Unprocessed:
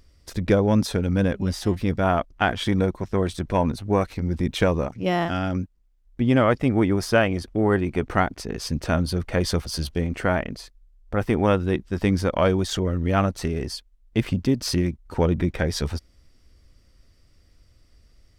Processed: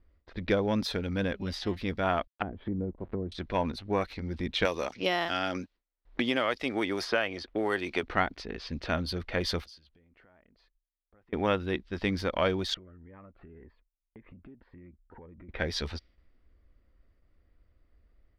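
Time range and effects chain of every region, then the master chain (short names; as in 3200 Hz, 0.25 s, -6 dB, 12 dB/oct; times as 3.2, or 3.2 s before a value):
2.27–3.32 level-crossing sampler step -40 dBFS + treble ducked by the level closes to 340 Hz, closed at -20 dBFS
4.65–8.03 tone controls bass -11 dB, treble +8 dB + three-band squash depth 100%
9.64–11.33 compressor 20:1, threshold -35 dBFS + pre-emphasis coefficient 0.8
12.74–15.49 compressor 10:1, threshold -31 dBFS + ladder low-pass 2600 Hz, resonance 20% + cascading phaser rising 1.9 Hz
whole clip: gate with hold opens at -48 dBFS; low-pass opened by the level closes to 1200 Hz, open at -19.5 dBFS; graphic EQ 125/2000/4000/8000 Hz -8/+4/+9/-10 dB; gain -7 dB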